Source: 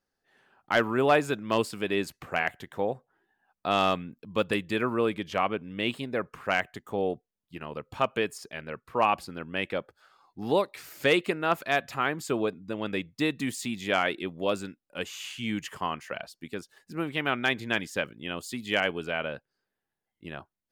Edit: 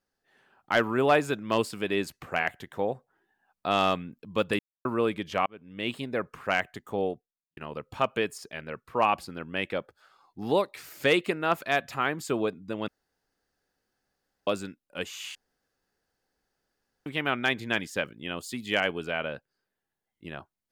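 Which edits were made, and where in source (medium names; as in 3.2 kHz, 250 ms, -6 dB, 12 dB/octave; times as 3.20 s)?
4.59–4.85 s: mute
5.46–5.99 s: fade in
7.04–7.57 s: fade out quadratic
12.88–14.47 s: room tone
15.35–17.06 s: room tone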